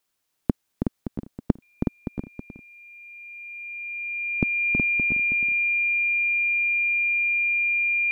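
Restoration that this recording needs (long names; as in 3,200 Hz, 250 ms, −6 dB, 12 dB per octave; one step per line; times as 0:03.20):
notch filter 2,400 Hz, Q 30
echo removal 322 ms −6 dB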